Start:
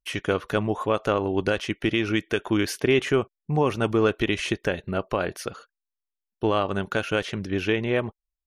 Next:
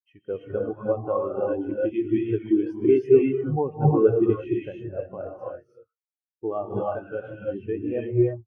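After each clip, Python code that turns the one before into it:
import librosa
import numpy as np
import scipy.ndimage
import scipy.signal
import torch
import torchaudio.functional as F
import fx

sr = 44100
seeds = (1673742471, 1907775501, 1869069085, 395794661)

y = fx.dynamic_eq(x, sr, hz=790.0, q=3.8, threshold_db=-41.0, ratio=4.0, max_db=5)
y = fx.rev_gated(y, sr, seeds[0], gate_ms=370, shape='rising', drr_db=-3.0)
y = fx.spectral_expand(y, sr, expansion=2.5)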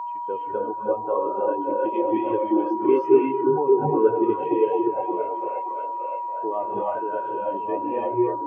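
y = x + 10.0 ** (-28.0 / 20.0) * np.sin(2.0 * np.pi * 960.0 * np.arange(len(x)) / sr)
y = scipy.signal.sosfilt(scipy.signal.butter(2, 260.0, 'highpass', fs=sr, output='sos'), y)
y = fx.echo_stepped(y, sr, ms=576, hz=430.0, octaves=0.7, feedback_pct=70, wet_db=-2.0)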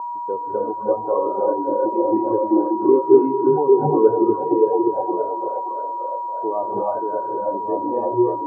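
y = scipy.signal.sosfilt(scipy.signal.butter(4, 1100.0, 'lowpass', fs=sr, output='sos'), x)
y = y * 10.0 ** (4.0 / 20.0)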